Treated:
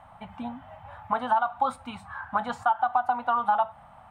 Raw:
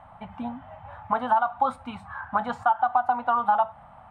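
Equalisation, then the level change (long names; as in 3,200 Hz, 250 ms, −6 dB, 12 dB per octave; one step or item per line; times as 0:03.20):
high-shelf EQ 3,500 Hz +10 dB
−2.5 dB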